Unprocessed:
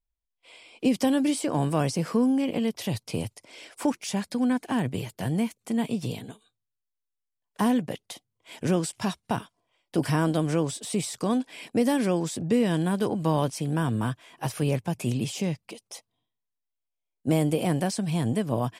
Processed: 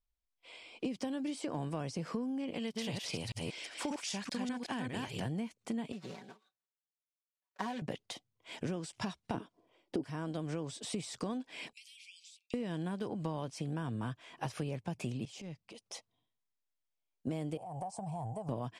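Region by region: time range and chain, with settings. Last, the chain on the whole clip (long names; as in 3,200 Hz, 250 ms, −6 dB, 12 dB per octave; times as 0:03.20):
0:02.54–0:05.20: delay that plays each chunk backwards 195 ms, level −2 dB + tilt shelving filter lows −4.5 dB, about 1,200 Hz
0:05.92–0:07.82: running median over 15 samples + high-pass filter 1,000 Hz 6 dB per octave + comb filter 5.3 ms, depth 75%
0:09.34–0:10.04: parametric band 340 Hz +15 dB 1.7 octaves + transient designer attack −4 dB, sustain 0 dB
0:11.73–0:12.54: Butterworth high-pass 2,300 Hz 96 dB per octave + downward compressor 16 to 1, threshold −45 dBFS + high-shelf EQ 4,500 Hz −4.5 dB
0:15.25–0:15.86: downward compressor 5 to 1, threshold −40 dBFS + transient designer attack −10 dB, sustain −4 dB
0:17.57–0:18.49: drawn EQ curve 120 Hz 0 dB, 270 Hz −19 dB, 530 Hz −5 dB, 800 Hz +13 dB, 1,700 Hz −24 dB, 2,500 Hz −18 dB, 3,800 Hz −22 dB, 8,800 Hz −2 dB, 13,000 Hz −14 dB + downward compressor, threshold −34 dBFS
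whole clip: downward compressor 10 to 1, threshold −32 dBFS; low-pass filter 6,800 Hz 12 dB per octave; level −2 dB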